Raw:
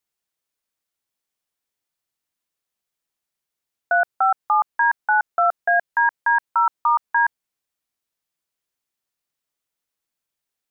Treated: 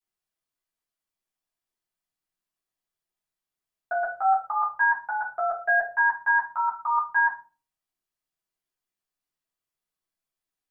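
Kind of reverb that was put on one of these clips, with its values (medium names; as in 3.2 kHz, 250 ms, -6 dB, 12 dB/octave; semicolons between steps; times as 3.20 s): simulated room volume 180 m³, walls furnished, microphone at 3.7 m; trim -13 dB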